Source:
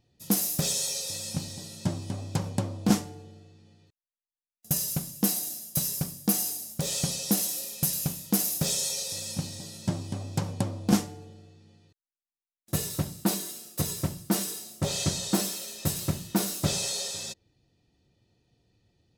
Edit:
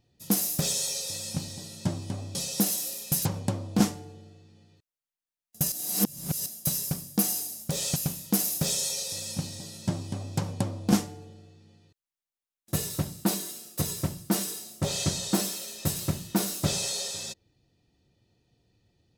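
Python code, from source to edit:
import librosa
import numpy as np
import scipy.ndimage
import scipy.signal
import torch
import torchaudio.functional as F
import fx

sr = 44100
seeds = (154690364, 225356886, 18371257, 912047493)

y = fx.edit(x, sr, fx.reverse_span(start_s=4.82, length_s=0.74),
    fx.move(start_s=7.06, length_s=0.9, to_s=2.35), tone=tone)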